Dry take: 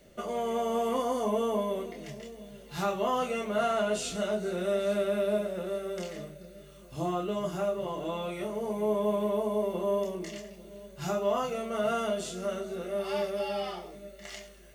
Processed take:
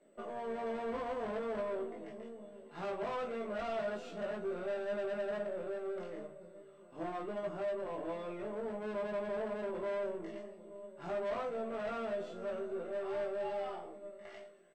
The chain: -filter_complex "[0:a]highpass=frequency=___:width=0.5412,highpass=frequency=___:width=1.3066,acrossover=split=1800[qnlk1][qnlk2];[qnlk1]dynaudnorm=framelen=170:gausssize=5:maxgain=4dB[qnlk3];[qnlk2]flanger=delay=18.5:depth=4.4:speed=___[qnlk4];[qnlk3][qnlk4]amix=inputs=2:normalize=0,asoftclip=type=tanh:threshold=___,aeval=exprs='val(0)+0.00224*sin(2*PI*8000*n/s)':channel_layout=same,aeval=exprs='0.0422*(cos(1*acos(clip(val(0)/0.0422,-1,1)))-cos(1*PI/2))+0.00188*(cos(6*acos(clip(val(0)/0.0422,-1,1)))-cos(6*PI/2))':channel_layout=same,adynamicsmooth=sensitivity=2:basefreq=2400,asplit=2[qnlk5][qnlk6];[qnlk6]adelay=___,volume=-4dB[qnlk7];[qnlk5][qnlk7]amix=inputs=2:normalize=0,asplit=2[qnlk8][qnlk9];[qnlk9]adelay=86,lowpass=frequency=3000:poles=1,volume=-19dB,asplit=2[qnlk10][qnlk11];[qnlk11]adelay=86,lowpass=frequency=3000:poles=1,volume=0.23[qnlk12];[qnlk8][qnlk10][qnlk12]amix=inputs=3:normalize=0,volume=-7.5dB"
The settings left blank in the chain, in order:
220, 220, 0.61, -28dB, 18